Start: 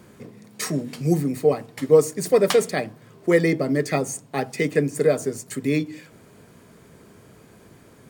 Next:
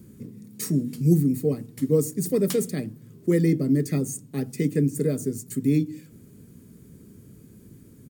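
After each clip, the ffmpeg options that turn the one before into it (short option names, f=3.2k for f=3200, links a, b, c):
-af "firequalizer=gain_entry='entry(250,0);entry(700,-23);entry(1300,-18);entry(6900,-7);entry(13000,0)':delay=0.05:min_phase=1,volume=3.5dB"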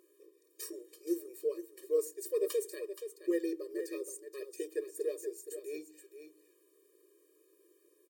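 -filter_complex "[0:a]aeval=exprs='val(0)+0.0112*(sin(2*PI*60*n/s)+sin(2*PI*2*60*n/s)/2+sin(2*PI*3*60*n/s)/3+sin(2*PI*4*60*n/s)/4+sin(2*PI*5*60*n/s)/5)':c=same,asplit=2[a][b];[b]aecho=0:1:474:0.316[c];[a][c]amix=inputs=2:normalize=0,afftfilt=real='re*eq(mod(floor(b*sr/1024/320),2),1)':imag='im*eq(mod(floor(b*sr/1024/320),2),1)':win_size=1024:overlap=0.75,volume=-8dB"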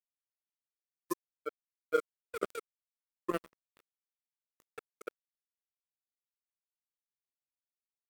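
-af "acrusher=bits=3:mix=0:aa=0.5,volume=2dB"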